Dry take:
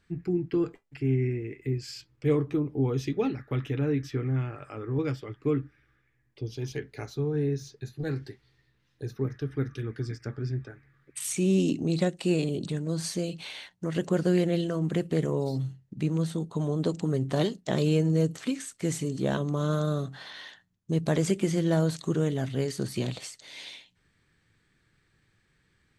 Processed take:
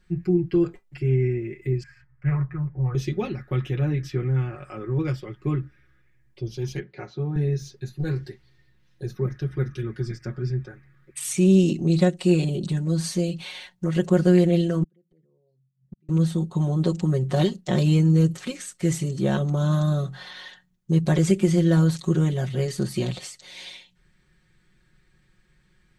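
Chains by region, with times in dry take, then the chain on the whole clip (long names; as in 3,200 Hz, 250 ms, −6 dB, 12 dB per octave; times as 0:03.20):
0:01.83–0:02.95: drawn EQ curve 150 Hz 0 dB, 230 Hz −22 dB, 1,800 Hz +6 dB, 3,500 Hz −29 dB + highs frequency-modulated by the lows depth 0.28 ms
0:06.80–0:07.36: high-pass filter 150 Hz + high-frequency loss of the air 200 metres
0:14.83–0:16.09: spectral envelope exaggerated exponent 1.5 + high-pass filter 100 Hz + gate with flip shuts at −34 dBFS, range −41 dB
whole clip: low-shelf EQ 91 Hz +11 dB; comb filter 5.5 ms, depth 95%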